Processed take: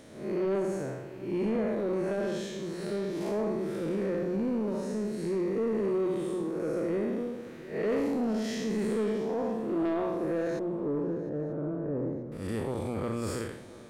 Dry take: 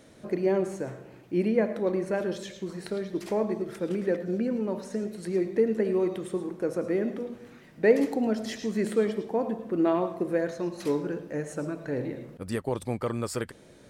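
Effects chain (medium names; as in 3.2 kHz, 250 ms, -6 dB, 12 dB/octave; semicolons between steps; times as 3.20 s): spectral blur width 176 ms; 10.59–12.32 s: Bessel low-pass 820 Hz, order 4; hum notches 60/120/180 Hz; in parallel at +2 dB: peak limiter -27 dBFS, peak gain reduction 11.5 dB; on the sum: saturation -20 dBFS, distortion -17 dB; on a send: shuffle delay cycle 934 ms, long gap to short 3:1, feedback 34%, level -19.5 dB; on the sum: trim -3 dB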